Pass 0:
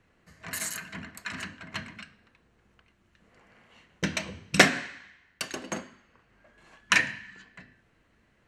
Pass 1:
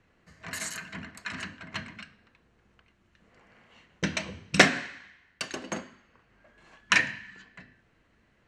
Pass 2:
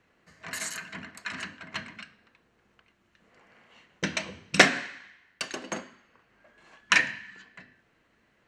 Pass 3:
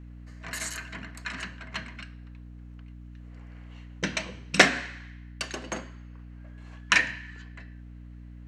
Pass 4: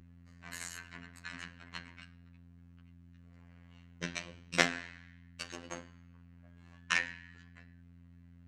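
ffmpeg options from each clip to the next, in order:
-af "lowpass=7.9k"
-af "lowshelf=f=130:g=-11.5,volume=1dB"
-af "aeval=exprs='val(0)+0.00708*(sin(2*PI*60*n/s)+sin(2*PI*2*60*n/s)/2+sin(2*PI*3*60*n/s)/3+sin(2*PI*4*60*n/s)/4+sin(2*PI*5*60*n/s)/5)':c=same"
-af "afftfilt=real='hypot(re,im)*cos(PI*b)':imag='0':win_size=2048:overlap=0.75,volume=-6dB"

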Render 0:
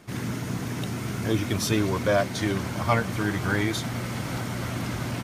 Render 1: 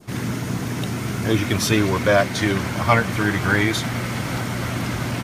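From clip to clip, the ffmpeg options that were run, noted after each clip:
-af "adynamicequalizer=threshold=0.0126:dfrequency=2000:dqfactor=0.94:tfrequency=2000:tqfactor=0.94:attack=5:release=100:ratio=0.375:range=2:mode=boostabove:tftype=bell,volume=5dB"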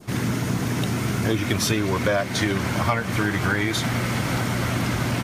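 -af "acompressor=threshold=-20dB:ratio=10,volume=2dB"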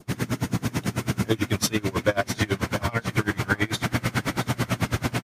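-af "aecho=1:1:665:0.316,aeval=exprs='val(0)*pow(10,-26*(0.5-0.5*cos(2*PI*9.1*n/s))/20)':c=same,volume=3dB"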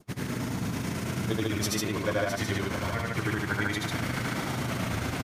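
-af "aecho=1:1:78.72|145.8:0.891|0.891,volume=-8dB"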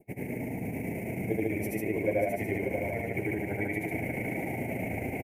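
-af "firequalizer=gain_entry='entry(110,0);entry(410,8);entry(800,6);entry(1200,-28);entry(2200,11);entry(3500,-28);entry(10000,0);entry(15000,6)':delay=0.05:min_phase=1,aecho=1:1:586:0.335,volume=-6dB"

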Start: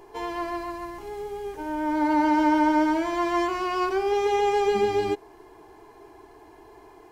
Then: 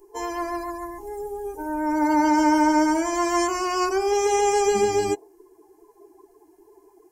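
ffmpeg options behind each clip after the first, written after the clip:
-af "aexciter=amount=8:drive=4.5:freq=5.4k,afftdn=nr=20:nf=-38,volume=2dB"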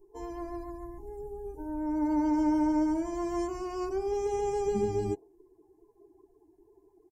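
-af "firequalizer=gain_entry='entry(160,0);entry(300,-8);entry(450,-12);entry(1400,-22)':delay=0.05:min_phase=1,volume=2.5dB"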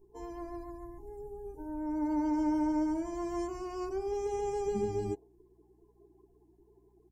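-af "aeval=exprs='val(0)+0.000631*(sin(2*PI*60*n/s)+sin(2*PI*2*60*n/s)/2+sin(2*PI*3*60*n/s)/3+sin(2*PI*4*60*n/s)/4+sin(2*PI*5*60*n/s)/5)':c=same,volume=-3.5dB"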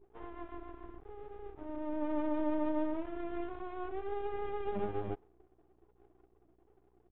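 -af "aeval=exprs='max(val(0),0)':c=same,aresample=8000,aresample=44100"

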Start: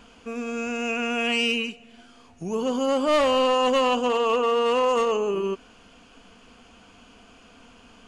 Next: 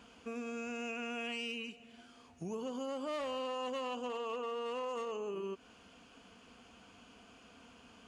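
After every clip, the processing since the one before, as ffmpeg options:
-af "highpass=59,acompressor=threshold=-31dB:ratio=5,volume=-7dB"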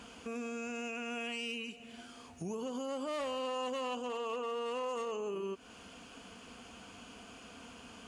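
-af "equalizer=f=9.3k:w=1.1:g=6,alimiter=level_in=14dB:limit=-24dB:level=0:latency=1:release=251,volume=-14dB,volume=6.5dB"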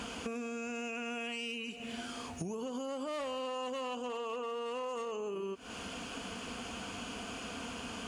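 -af "acompressor=threshold=-46dB:ratio=10,volume=10dB"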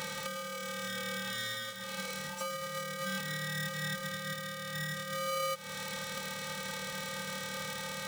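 -af "aeval=exprs='val(0)+0.5*0.00251*sgn(val(0))':c=same,afftfilt=real='hypot(re,im)*cos(PI*b)':imag='0':win_size=512:overlap=0.75,aeval=exprs='val(0)*sgn(sin(2*PI*880*n/s))':c=same,volume=6dB"

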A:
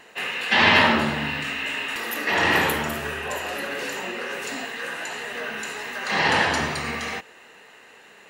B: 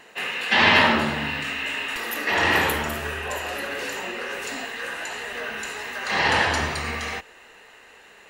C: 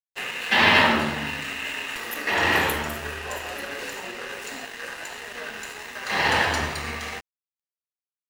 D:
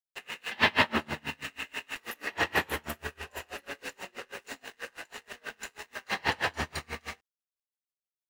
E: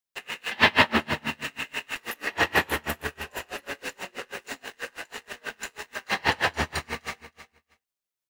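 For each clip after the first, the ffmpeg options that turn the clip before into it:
-af "asubboost=boost=6:cutoff=63"
-af "aeval=exprs='sgn(val(0))*max(abs(val(0))-0.0133,0)':c=same"
-af "aeval=exprs='val(0)*pow(10,-32*(0.5-0.5*cos(2*PI*6.2*n/s))/20)':c=same,volume=-2dB"
-af "aecho=1:1:317|634:0.211|0.0317,volume=5dB"

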